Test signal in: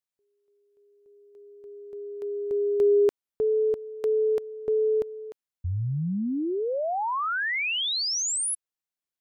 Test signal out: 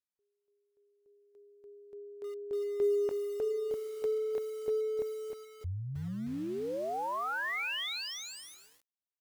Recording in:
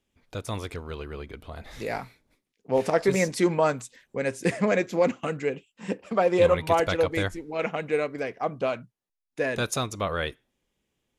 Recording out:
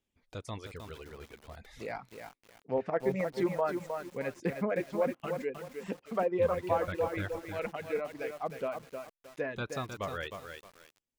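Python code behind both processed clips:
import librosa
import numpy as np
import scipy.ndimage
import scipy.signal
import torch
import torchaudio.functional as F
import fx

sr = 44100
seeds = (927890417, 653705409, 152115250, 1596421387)

y = fx.dereverb_blind(x, sr, rt60_s=1.3)
y = fx.env_lowpass_down(y, sr, base_hz=1800.0, full_db=-22.0)
y = fx.echo_crushed(y, sr, ms=311, feedback_pct=35, bits=7, wet_db=-6.0)
y = F.gain(torch.from_numpy(y), -7.5).numpy()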